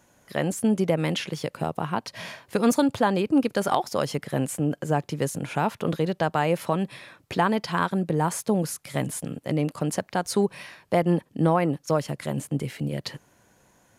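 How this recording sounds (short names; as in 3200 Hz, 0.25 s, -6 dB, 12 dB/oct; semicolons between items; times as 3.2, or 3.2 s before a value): noise floor -63 dBFS; spectral tilt -5.5 dB/oct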